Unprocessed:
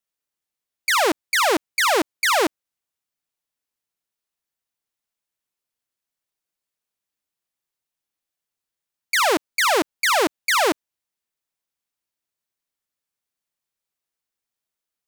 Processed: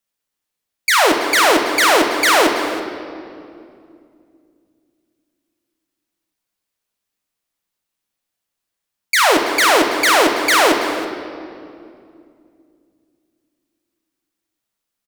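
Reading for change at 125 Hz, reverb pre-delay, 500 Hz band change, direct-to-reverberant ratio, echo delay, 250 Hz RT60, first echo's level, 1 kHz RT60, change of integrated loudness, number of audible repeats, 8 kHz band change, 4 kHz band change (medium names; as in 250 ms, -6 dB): no reading, 3 ms, +6.5 dB, 2.5 dB, 329 ms, 3.6 s, -15.5 dB, 2.2 s, +5.5 dB, 1, +5.5 dB, +6.0 dB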